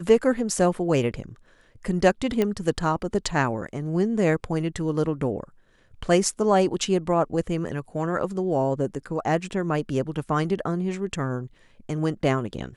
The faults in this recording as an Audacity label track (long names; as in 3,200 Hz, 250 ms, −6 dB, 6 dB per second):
2.420000	2.420000	click −11 dBFS